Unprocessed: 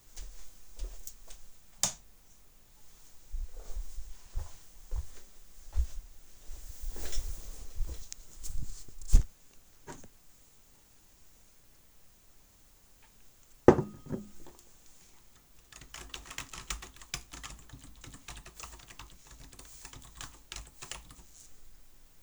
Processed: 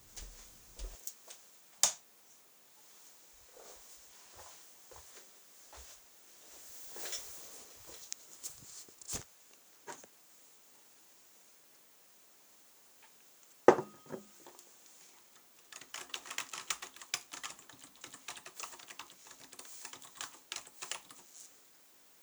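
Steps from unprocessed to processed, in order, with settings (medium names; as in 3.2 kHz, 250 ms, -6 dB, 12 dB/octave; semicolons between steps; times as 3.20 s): dynamic bell 260 Hz, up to -6 dB, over -56 dBFS, Q 1.1; high-pass 55 Hz 12 dB/octave, from 0.95 s 330 Hz; trim +1.5 dB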